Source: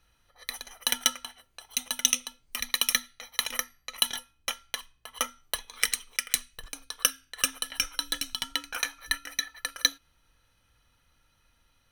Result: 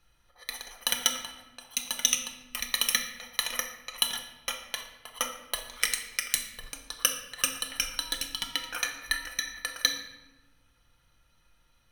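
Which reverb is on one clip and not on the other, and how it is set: shoebox room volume 630 m³, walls mixed, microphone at 0.87 m; gain -1.5 dB

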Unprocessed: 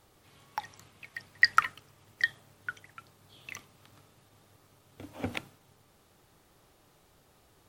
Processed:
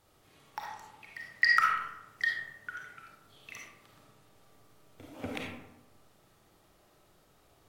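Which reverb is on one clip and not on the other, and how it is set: digital reverb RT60 0.99 s, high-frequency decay 0.45×, pre-delay 10 ms, DRR -2 dB; gain -5 dB

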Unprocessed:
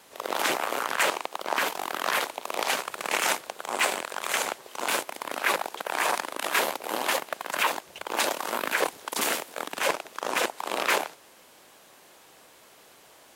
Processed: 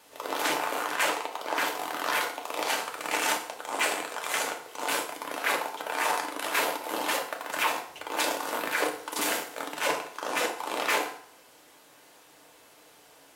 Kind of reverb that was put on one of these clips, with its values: FDN reverb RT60 0.6 s, low-frequency decay 0.8×, high-frequency decay 0.8×, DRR 1 dB; gain -4 dB

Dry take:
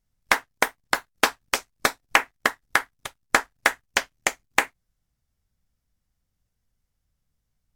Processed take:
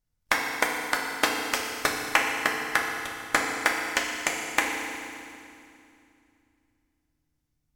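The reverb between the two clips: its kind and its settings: FDN reverb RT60 2.5 s, low-frequency decay 1.45×, high-frequency decay 0.95×, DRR -0.5 dB; gain -5 dB

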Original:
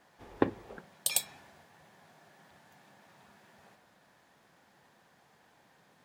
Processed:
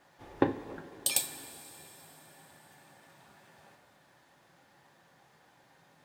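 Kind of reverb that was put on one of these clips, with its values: two-slope reverb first 0.32 s, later 4.2 s, from -18 dB, DRR 4.5 dB

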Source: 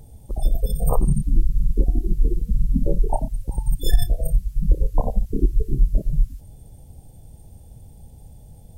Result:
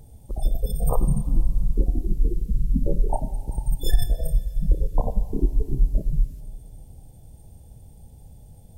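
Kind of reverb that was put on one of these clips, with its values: Schroeder reverb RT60 2.2 s, combs from 32 ms, DRR 13 dB; gain -2.5 dB

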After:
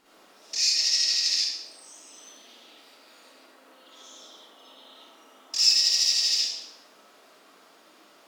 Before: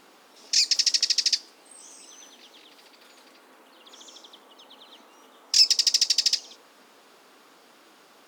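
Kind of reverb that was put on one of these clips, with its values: digital reverb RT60 0.81 s, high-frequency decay 0.95×, pre-delay 20 ms, DRR -9 dB; gain -10 dB

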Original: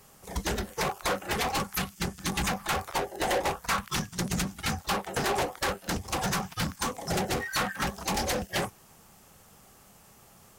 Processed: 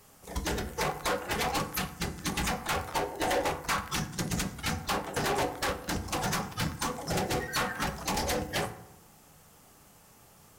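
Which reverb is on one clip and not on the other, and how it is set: FDN reverb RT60 0.82 s, low-frequency decay 1.35×, high-frequency decay 0.5×, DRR 7.5 dB; gain -2 dB

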